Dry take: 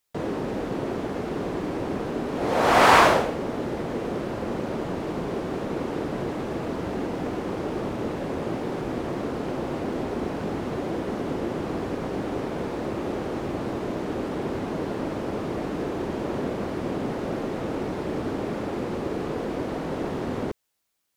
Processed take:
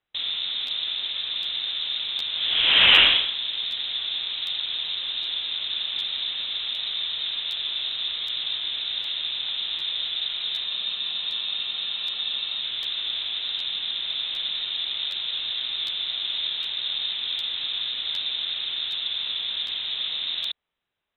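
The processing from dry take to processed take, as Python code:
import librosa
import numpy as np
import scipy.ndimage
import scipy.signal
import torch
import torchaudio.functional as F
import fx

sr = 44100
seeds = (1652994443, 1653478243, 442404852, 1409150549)

y = fx.freq_invert(x, sr, carrier_hz=3900)
y = fx.spec_freeze(y, sr, seeds[0], at_s=10.69, hold_s=1.92)
y = fx.buffer_crackle(y, sr, first_s=0.66, period_s=0.76, block=512, kind='repeat')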